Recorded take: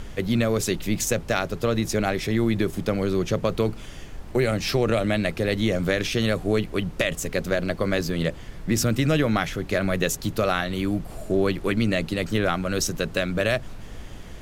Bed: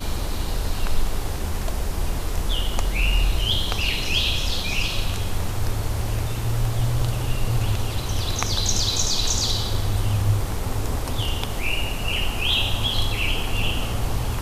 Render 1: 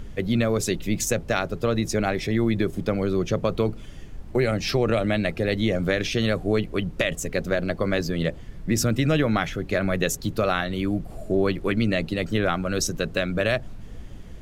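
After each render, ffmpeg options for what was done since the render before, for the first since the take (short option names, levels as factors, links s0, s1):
-af "afftdn=nr=8:nf=-39"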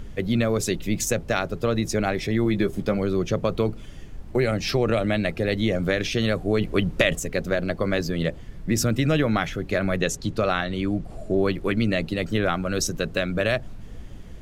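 -filter_complex "[0:a]asettb=1/sr,asplit=3[s0][s1][s2];[s0]atrim=end=2.444[s3];[s1]atrim=start=2.44:end=2.98,asetpts=PTS-STARTPTS,afade=t=in:d=0.004:c=qsin,afade=t=out:st=0.536:d=0.004:c=qsin,asplit=2[s4][s5];[s5]adelay=15,volume=0.447[s6];[s4][s6]amix=inputs=2:normalize=0,atrim=end_sample=23814[s7];[s2]atrim=start=2.976[s8];[s3][s7]acrossfade=d=0.004:c1=hsin:c2=qsin[s9];[s9][s8]acrossfade=d=0.004:c1=qsin:c2=hsin,asettb=1/sr,asplit=3[s10][s11][s12];[s10]atrim=end=9.974[s13];[s11]atrim=start=9.97:end=11.37,asetpts=PTS-STARTPTS,afade=t=in:d=0.004:c=qsin,afade=t=out:st=1.396:d=0.004:c=qsin,lowpass=8600[s14];[s12]atrim=start=11.366[s15];[s13][s14]acrossfade=d=0.004:c1=hsin:c2=qsin[s16];[s16][s15]acrossfade=d=0.004:c1=qsin:c2=hsin,asplit=3[s17][s18][s19];[s17]atrim=end=6.612[s20];[s18]atrim=start=6.608:end=7.192,asetpts=PTS-STARTPTS,volume=1.58[s21];[s19]atrim=start=7.188[s22];[s20][s21]acrossfade=d=0.004:c1=hsin:c2=hsin[s23];[s23][s22]acrossfade=d=0.004:c1=hsin:c2=hsin"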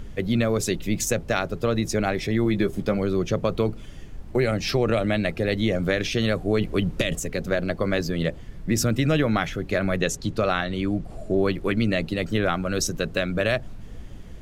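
-filter_complex "[0:a]asettb=1/sr,asplit=3[s0][s1][s2];[s0]atrim=end=6.684[s3];[s1]atrim=start=6.68:end=7.47,asetpts=PTS-STARTPTS,afade=t=in:d=0.004:c=qsin,afade=t=out:st=0.786:d=0.004:c=qsin,acrossover=split=410|3000[s4][s5][s6];[s5]acompressor=threshold=0.0447:ratio=6:attack=3.2:release=140:knee=2.83:detection=peak[s7];[s4][s7][s6]amix=inputs=3:normalize=0[s8];[s2]atrim=start=7.466[s9];[s3][s8]acrossfade=d=0.004:c1=hsin:c2=qsin[s10];[s10][s9]acrossfade=d=0.004:c1=qsin:c2=hsin"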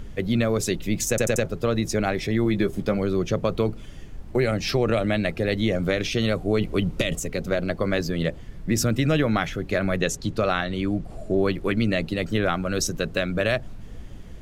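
-filter_complex "[0:a]asettb=1/sr,asplit=3[s0][s1][s2];[s0]atrim=end=5.874[s3];[s1]atrim=start=5.87:end=7.66,asetpts=PTS-STARTPTS,afade=t=in:d=0.004:c=qsin,afade=t=out:st=1.786:d=0.004:c=qsin,bandreject=f=1700:w=12[s4];[s2]atrim=start=7.656[s5];[s3][s4]acrossfade=d=0.004:c1=hsin:c2=qsin[s6];[s6][s5]acrossfade=d=0.004:c1=qsin:c2=hsin,asplit=5[s7][s8][s9][s10][s11];[s7]atrim=end=1.182[s12];[s8]atrim=start=1.088:end=1.182[s13];[s9]atrim=start=1.088:end=1.182[s14];[s10]atrim=start=1.088:end=1.182[s15];[s11]atrim=start=1.448[s16];[s12][s13]acrossfade=d=0.004:c1=hsin:c2=hsin[s17];[s17][s14]acrossfade=d=0.004:c1=hsin:c2=hsin[s18];[s18][s15]acrossfade=d=0.004:c1=hsin:c2=hsin[s19];[s19][s16]acrossfade=d=0.004:c1=hsin:c2=hsin"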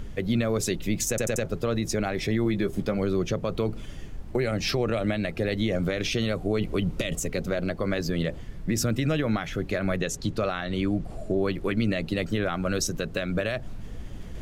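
-af "alimiter=limit=0.158:level=0:latency=1:release=131,areverse,acompressor=mode=upward:threshold=0.0316:ratio=2.5,areverse"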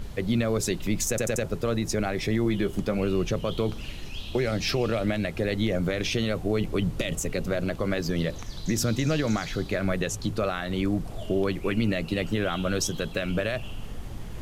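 -filter_complex "[1:a]volume=0.112[s0];[0:a][s0]amix=inputs=2:normalize=0"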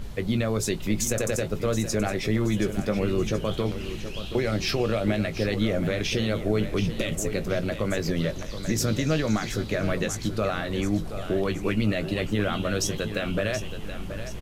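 -filter_complex "[0:a]asplit=2[s0][s1];[s1]adelay=19,volume=0.282[s2];[s0][s2]amix=inputs=2:normalize=0,asplit=2[s3][s4];[s4]aecho=0:1:726|1452|2178|2904|3630:0.282|0.13|0.0596|0.0274|0.0126[s5];[s3][s5]amix=inputs=2:normalize=0"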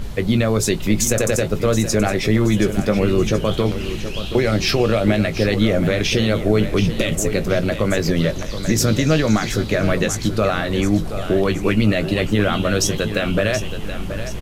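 -af "volume=2.51"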